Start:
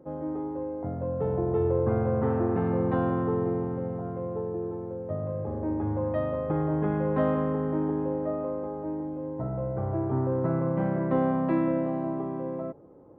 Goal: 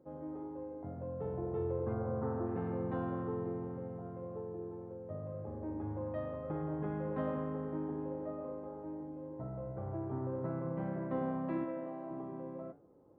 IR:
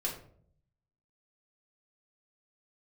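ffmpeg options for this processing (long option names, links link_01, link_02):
-filter_complex "[0:a]asettb=1/sr,asplit=3[link_01][link_02][link_03];[link_01]atrim=end=11.644[link_04];[link_02]atrim=start=11.64:end=12.11,asetpts=PTS-STARTPTS,afade=type=in:duration=0.004:curve=qsin,afade=type=out:start_time=0.466:duration=0.004:curve=qsin,bass=frequency=250:gain=-12,treble=frequency=4000:gain=-5[link_05];[link_03]atrim=start=12.106[link_06];[link_04][link_05]acrossfade=duration=0.004:curve1=hsin:curve2=qsin[link_07];[link_07][link_06]acrossfade=duration=0.004:curve1=qsin:curve2=hsin,flanger=delay=8.8:depth=3.7:regen=-82:speed=1.8:shape=sinusoidal,asettb=1/sr,asplit=3[link_08][link_09][link_10];[link_08]atrim=end=1.934[link_11];[link_09]atrim=start=1.93:end=2.46,asetpts=PTS-STARTPTS,afade=type=in:duration=0.004:curve=qsin,afade=type=out:start_time=0.526:duration=0.004:curve=qsin,highshelf=frequency=1800:width_type=q:width=1.5:gain=-8.5[link_12];[link_10]atrim=start=2.456[link_13];[link_11][link_12]acrossfade=duration=0.004:curve1=hsin:curve2=qsin[link_14];[link_14][link_13]acrossfade=duration=0.004:curve1=qsin:curve2=hsin,volume=-6.5dB"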